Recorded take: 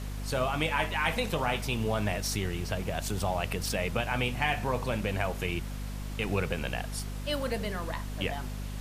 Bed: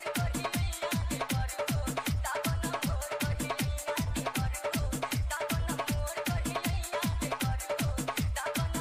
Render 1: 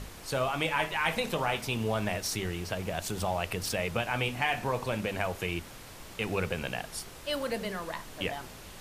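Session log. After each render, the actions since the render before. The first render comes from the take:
mains-hum notches 50/100/150/200/250/300 Hz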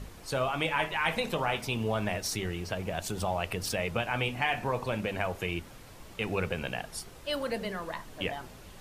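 broadband denoise 6 dB, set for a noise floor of −47 dBFS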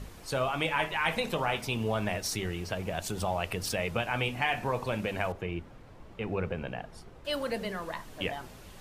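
0:05.32–0:07.25: low-pass filter 1,100 Hz 6 dB per octave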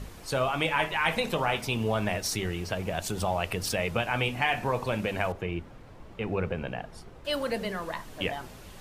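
level +2.5 dB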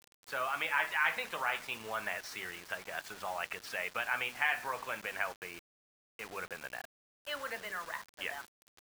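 resonant band-pass 1,600 Hz, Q 1.8
bit-depth reduction 8 bits, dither none

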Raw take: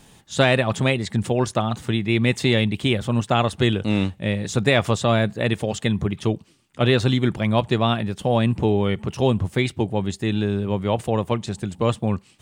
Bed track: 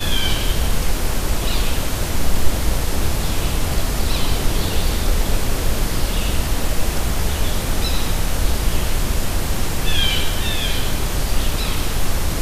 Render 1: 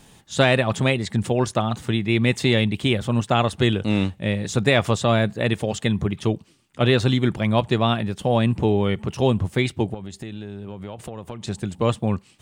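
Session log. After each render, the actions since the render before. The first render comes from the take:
0:09.94–0:11.44: downward compressor 12 to 1, threshold −29 dBFS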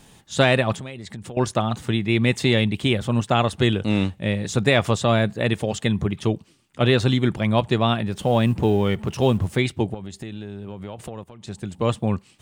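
0:00.74–0:01.37: downward compressor 5 to 1, threshold −33 dBFS
0:08.12–0:09.57: mu-law and A-law mismatch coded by mu
0:11.24–0:11.98: fade in linear, from −12 dB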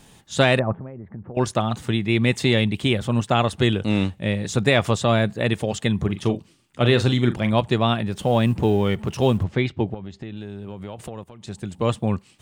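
0:00.59–0:01.35: Bessel low-pass filter 980 Hz, order 6
0:05.98–0:07.53: double-tracking delay 41 ms −11 dB
0:09.43–0:10.37: high-frequency loss of the air 170 metres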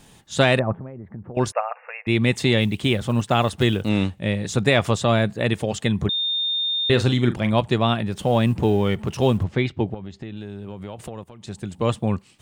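0:01.52–0:02.07: linear-phase brick-wall band-pass 460–2,800 Hz
0:02.61–0:03.90: one scale factor per block 7 bits
0:06.09–0:06.90: beep over 3,640 Hz −20.5 dBFS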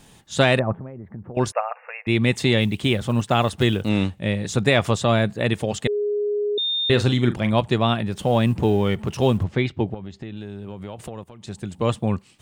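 0:05.87–0:06.58: beep over 414 Hz −20 dBFS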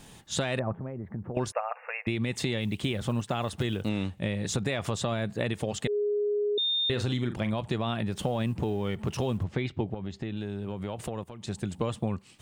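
brickwall limiter −11.5 dBFS, peak gain reduction 7 dB
downward compressor, threshold −26 dBFS, peak gain reduction 10 dB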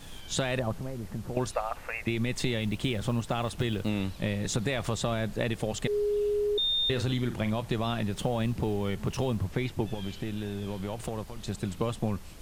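mix in bed track −27 dB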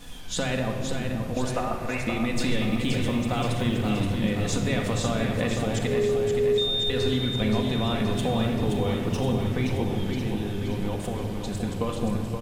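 repeating echo 524 ms, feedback 57%, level −6 dB
rectangular room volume 3,100 cubic metres, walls mixed, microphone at 1.9 metres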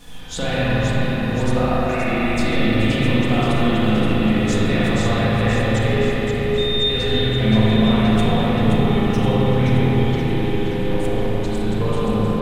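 spring reverb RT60 3.7 s, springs 37/55 ms, chirp 30 ms, DRR −8 dB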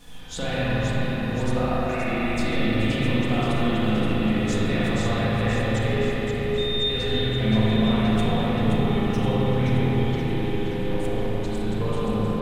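level −5 dB

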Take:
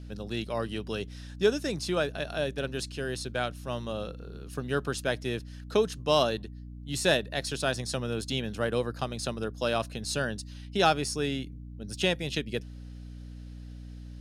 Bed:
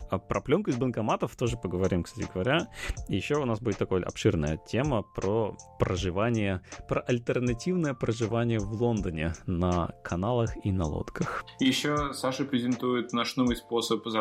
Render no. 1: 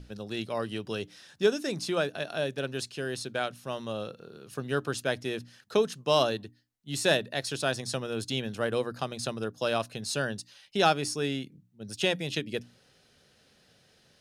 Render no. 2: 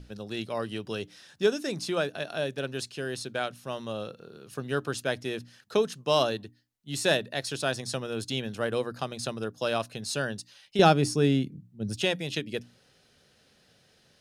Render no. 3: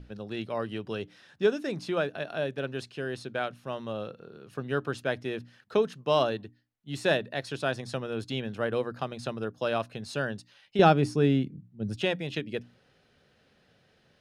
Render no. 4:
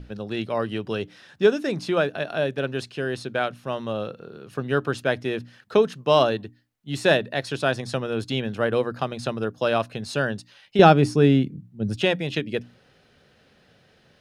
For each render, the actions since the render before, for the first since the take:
mains-hum notches 60/120/180/240/300 Hz
0:10.79–0:12.02: low-shelf EQ 450 Hz +12 dB
bass and treble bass 0 dB, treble −13 dB
level +6.5 dB; brickwall limiter −1 dBFS, peak gain reduction 1 dB

